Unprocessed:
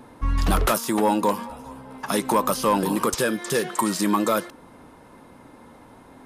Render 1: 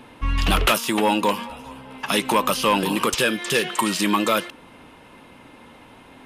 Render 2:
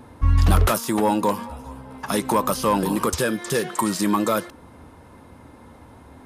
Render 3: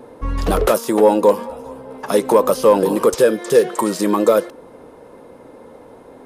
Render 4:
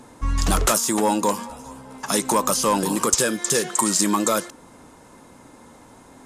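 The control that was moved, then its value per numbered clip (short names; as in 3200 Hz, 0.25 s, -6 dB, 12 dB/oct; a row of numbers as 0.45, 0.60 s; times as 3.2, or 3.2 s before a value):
bell, frequency: 2800, 78, 480, 7100 Hz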